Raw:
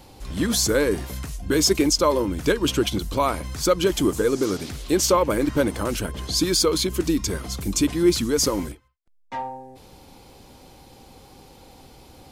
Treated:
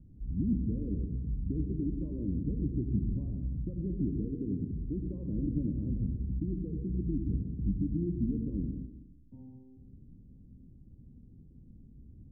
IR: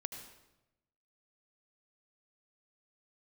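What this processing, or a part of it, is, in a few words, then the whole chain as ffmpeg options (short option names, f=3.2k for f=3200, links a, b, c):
club heard from the street: -filter_complex "[0:a]alimiter=limit=-14dB:level=0:latency=1:release=72,lowpass=f=230:w=0.5412,lowpass=f=230:w=1.3066[a];[1:a]atrim=start_sample=2205[b];[a][b]afir=irnorm=-1:irlink=0"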